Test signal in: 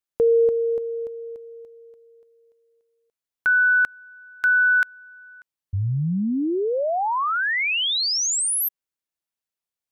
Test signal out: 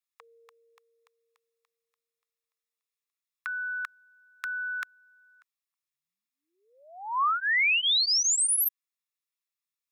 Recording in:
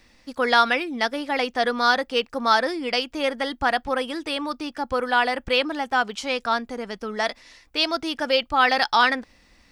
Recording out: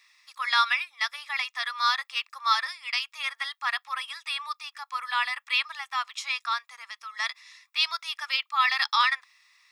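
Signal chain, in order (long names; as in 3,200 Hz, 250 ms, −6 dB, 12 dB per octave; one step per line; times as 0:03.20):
elliptic high-pass filter 1,100 Hz, stop band 80 dB
notch comb filter 1,500 Hz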